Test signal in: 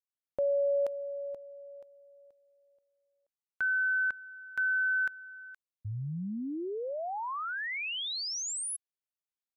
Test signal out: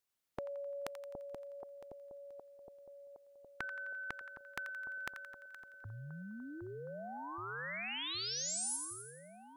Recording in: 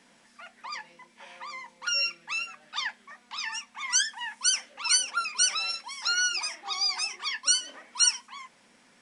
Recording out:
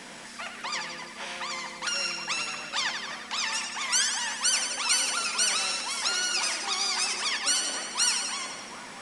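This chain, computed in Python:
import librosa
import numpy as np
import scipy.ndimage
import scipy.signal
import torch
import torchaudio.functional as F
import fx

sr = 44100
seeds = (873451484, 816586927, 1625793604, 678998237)

y = fx.echo_split(x, sr, split_hz=1000.0, low_ms=765, high_ms=86, feedback_pct=52, wet_db=-11)
y = fx.spectral_comp(y, sr, ratio=2.0)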